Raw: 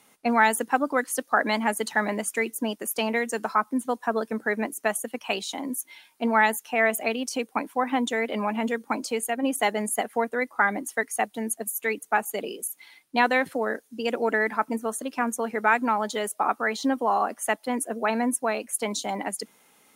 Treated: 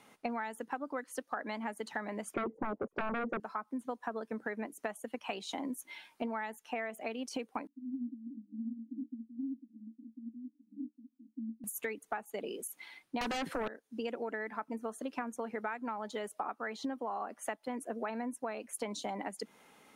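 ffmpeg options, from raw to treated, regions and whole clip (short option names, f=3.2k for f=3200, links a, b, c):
-filter_complex "[0:a]asettb=1/sr,asplit=3[a][b][c];[a]atrim=end=2.344[d];[b]atrim=start=2.34:end=3.4,asetpts=PTS-STARTPTS,afade=t=in:d=0.004:c=qsin,afade=t=out:st=1.056:d=0.004:c=qsin,lowpass=f=570:t=q:w=2.1,aeval=exprs='0.224*sin(PI/2*3.98*val(0)/0.224)':c=same[e];[c]atrim=start=3.396[f];[d][e]acrossfade=d=0.004:c1=hsin:c2=qsin[g];[g][f]acrossfade=d=0.004:c1=qsin:c2=hsin,asettb=1/sr,asplit=3[h][i][j];[h]atrim=end=7.674[k];[i]atrim=start=7.67:end=11.64,asetpts=PTS-STARTPTS,afade=t=in:d=0.004:c=qsin,afade=t=out:st=3.966:d=0.004:c=qsin,acompressor=threshold=-33dB:ratio=3:attack=3.2:release=140:knee=1:detection=peak,volume=31.5dB,asoftclip=hard,volume=-31.5dB,asuperpass=centerf=260:order=12:qfactor=3.2[l];[j]atrim=start=11.636[m];[k][l]acrossfade=d=0.004:c1=hsin:c2=qsin[n];[n][m]acrossfade=d=0.004:c1=qsin:c2=hsin,asettb=1/sr,asplit=3[o][p][q];[o]atrim=end=13.214[r];[p]atrim=start=13.21:end=13.68,asetpts=PTS-STARTPTS,afade=t=in:d=0.004:c=qsin,afade=t=out:st=0.466:d=0.004:c=qsin,highpass=160,acrossover=split=220|3000[s][t][u];[t]acompressor=threshold=-30dB:ratio=2:attack=3.2:release=140:knee=2.83:detection=peak[v];[s][v][u]amix=inputs=3:normalize=0,aeval=exprs='0.316*sin(PI/2*7.94*val(0)/0.316)':c=same[w];[q]atrim=start=13.676[x];[r][w]acrossfade=d=0.004:c1=hsin:c2=qsin[y];[y][x]acrossfade=d=0.004:c1=qsin:c2=hsin,lowpass=f=2.7k:p=1,acompressor=threshold=-36dB:ratio=12,volume=1.5dB"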